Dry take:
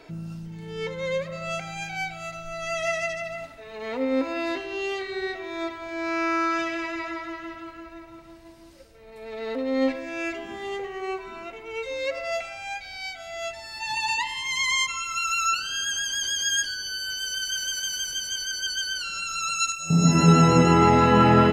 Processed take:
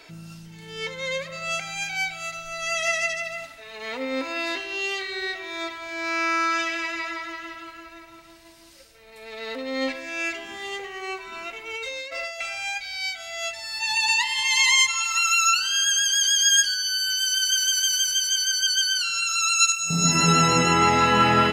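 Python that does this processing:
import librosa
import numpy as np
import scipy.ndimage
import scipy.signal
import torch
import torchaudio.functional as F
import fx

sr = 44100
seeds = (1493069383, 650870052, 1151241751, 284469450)

y = fx.over_compress(x, sr, threshold_db=-33.0, ratio=-1.0, at=(11.32, 12.78))
y = fx.echo_throw(y, sr, start_s=13.68, length_s=0.71, ms=480, feedback_pct=30, wet_db=-6.5)
y = fx.tilt_shelf(y, sr, db=-7.5, hz=1200.0)
y = F.gain(torch.from_numpy(y), 1.0).numpy()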